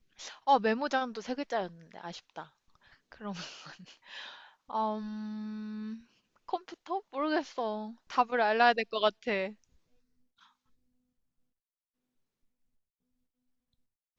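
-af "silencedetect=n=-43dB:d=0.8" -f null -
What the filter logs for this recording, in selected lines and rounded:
silence_start: 9.52
silence_end: 14.19 | silence_duration: 4.67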